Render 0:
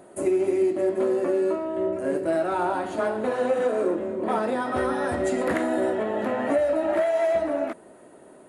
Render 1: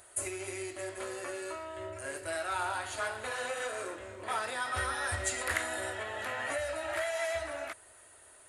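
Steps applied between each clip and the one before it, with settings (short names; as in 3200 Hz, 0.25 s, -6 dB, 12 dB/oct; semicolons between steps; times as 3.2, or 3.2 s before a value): EQ curve 100 Hz 0 dB, 170 Hz -29 dB, 980 Hz -8 dB, 1500 Hz -1 dB, 7200 Hz +7 dB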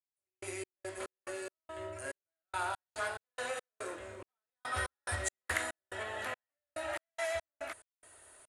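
step gate "..x.x.x.xx" 71 bpm -60 dB; gain -1.5 dB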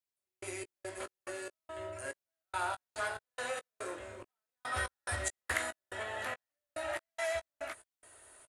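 doubler 17 ms -12 dB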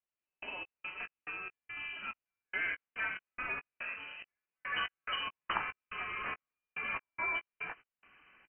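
vibrato 0.59 Hz 14 cents; inverted band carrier 3000 Hz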